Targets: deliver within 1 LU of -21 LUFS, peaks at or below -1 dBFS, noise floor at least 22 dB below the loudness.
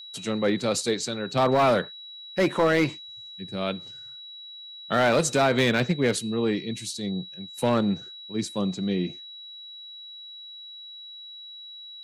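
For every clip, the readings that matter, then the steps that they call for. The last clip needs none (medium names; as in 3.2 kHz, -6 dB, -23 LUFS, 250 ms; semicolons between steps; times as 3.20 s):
clipped samples 0.8%; clipping level -15.0 dBFS; steady tone 3.9 kHz; tone level -40 dBFS; loudness -25.5 LUFS; peak level -15.0 dBFS; loudness target -21.0 LUFS
-> clip repair -15 dBFS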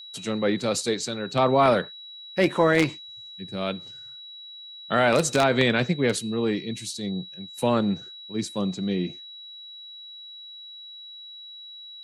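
clipped samples 0.0%; steady tone 3.9 kHz; tone level -40 dBFS
-> band-stop 3.9 kHz, Q 30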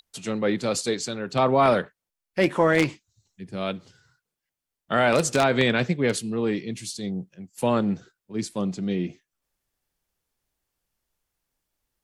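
steady tone not found; loudness -24.5 LUFS; peak level -5.5 dBFS; loudness target -21.0 LUFS
-> trim +3.5 dB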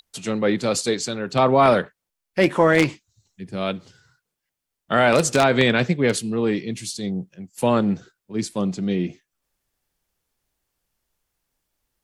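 loudness -21.0 LUFS; peak level -2.0 dBFS; noise floor -83 dBFS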